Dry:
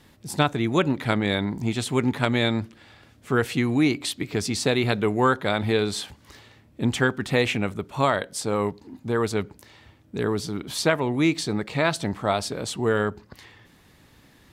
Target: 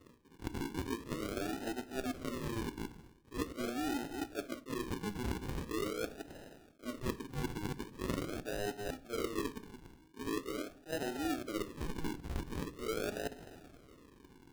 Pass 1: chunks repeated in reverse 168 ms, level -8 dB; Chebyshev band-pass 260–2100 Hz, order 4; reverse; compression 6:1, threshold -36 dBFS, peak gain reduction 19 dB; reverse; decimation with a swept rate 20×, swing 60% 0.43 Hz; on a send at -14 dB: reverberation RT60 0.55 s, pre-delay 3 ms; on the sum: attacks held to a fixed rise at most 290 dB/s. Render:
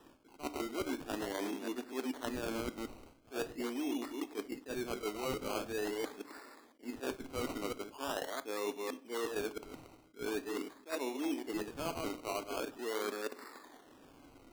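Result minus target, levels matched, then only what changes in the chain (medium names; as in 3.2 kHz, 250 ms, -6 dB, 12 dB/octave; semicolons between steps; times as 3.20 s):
decimation with a swept rate: distortion -16 dB
change: decimation with a swept rate 55×, swing 60% 0.43 Hz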